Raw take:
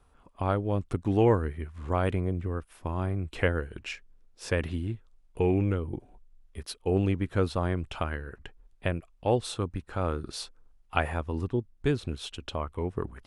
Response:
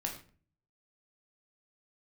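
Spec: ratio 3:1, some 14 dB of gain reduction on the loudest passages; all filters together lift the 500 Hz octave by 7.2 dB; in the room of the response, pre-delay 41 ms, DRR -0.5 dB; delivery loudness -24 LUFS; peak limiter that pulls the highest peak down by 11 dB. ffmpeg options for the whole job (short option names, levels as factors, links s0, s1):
-filter_complex "[0:a]equalizer=f=500:t=o:g=8.5,acompressor=threshold=0.0251:ratio=3,alimiter=level_in=1.33:limit=0.0631:level=0:latency=1,volume=0.75,asplit=2[s0][s1];[1:a]atrim=start_sample=2205,adelay=41[s2];[s1][s2]afir=irnorm=-1:irlink=0,volume=0.841[s3];[s0][s3]amix=inputs=2:normalize=0,volume=3.55"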